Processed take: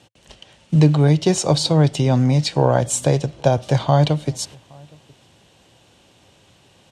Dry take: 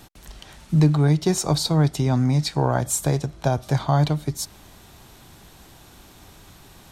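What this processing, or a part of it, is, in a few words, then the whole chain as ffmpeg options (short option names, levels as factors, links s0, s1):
car door speaker: -filter_complex "[0:a]agate=range=0.355:threshold=0.0112:ratio=16:detection=peak,highpass=90,equalizer=f=110:t=q:w=4:g=4,equalizer=f=530:t=q:w=4:g=9,equalizer=f=1300:t=q:w=4:g=-4,equalizer=f=2900:t=q:w=4:g=9,lowpass=f=9200:w=0.5412,lowpass=f=9200:w=1.3066,asplit=2[s0][s1];[s1]adelay=816.3,volume=0.0398,highshelf=f=4000:g=-18.4[s2];[s0][s2]amix=inputs=2:normalize=0,volume=1.41"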